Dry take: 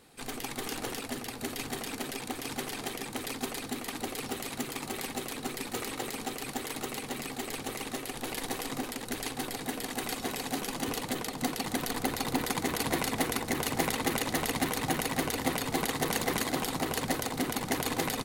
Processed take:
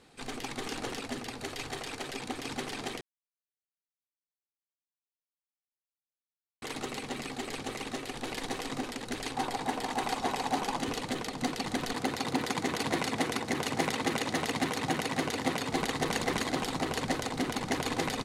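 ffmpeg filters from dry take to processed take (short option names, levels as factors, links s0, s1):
-filter_complex "[0:a]asettb=1/sr,asplit=3[s0][s1][s2];[s0]atrim=end=1.414[s3];[s1]atrim=start=1.41:end=2.14,asetpts=PTS-STARTPTS,afade=t=in:d=0.004:c=qsin,afade=t=out:st=0.726:d=0.004:c=qsin,equalizer=f=230:t=o:w=0.64:g=-9.5[s4];[s2]atrim=start=2.136[s5];[s3][s4]acrossfade=d=0.004:c1=hsin:c2=qsin[s6];[s6][s5]acrossfade=d=0.004:c1=qsin:c2=hsin,asettb=1/sr,asplit=3[s7][s8][s9];[s7]atrim=end=9.344[s10];[s8]atrim=start=9.34:end=10.8,asetpts=PTS-STARTPTS,afade=t=in:d=0.004:c=qsin,afade=t=out:st=1.456:d=0.004:c=qsin,equalizer=f=870:w=1.8:g=10.5[s11];[s9]atrim=start=10.796[s12];[s10][s11]acrossfade=d=0.004:c1=hsin:c2=qsin[s13];[s13][s12]acrossfade=d=0.004:c1=qsin:c2=hsin,asettb=1/sr,asplit=3[s14][s15][s16];[s14]atrim=end=11.944[s17];[s15]atrim=start=11.94:end=15.73,asetpts=PTS-STARTPTS,afade=t=in:d=0.004:c=qsin,afade=t=out:st=3.786:d=0.004:c=qsin,highpass=95[s18];[s16]atrim=start=15.726[s19];[s17][s18]acrossfade=d=0.004:c1=hsin:c2=qsin[s20];[s20][s19]acrossfade=d=0.004:c1=qsin:c2=hsin,asplit=3[s21][s22][s23];[s21]atrim=end=3.01,asetpts=PTS-STARTPTS,afade=t=out:st=3.006:d=0.004:c=hsin[s24];[s22]atrim=start=3.01:end=6.62,asetpts=PTS-STARTPTS,volume=0[s25];[s23]atrim=start=6.62,asetpts=PTS-STARTPTS,afade=t=in:d=0.004:c=hsin[s26];[s24][s25][s26]concat=n=3:v=0:a=1,lowpass=7200"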